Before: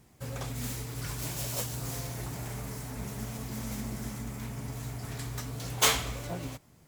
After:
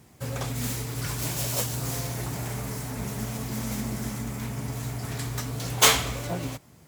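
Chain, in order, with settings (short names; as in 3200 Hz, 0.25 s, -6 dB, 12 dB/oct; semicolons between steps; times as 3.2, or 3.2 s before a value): HPF 61 Hz; gain +6 dB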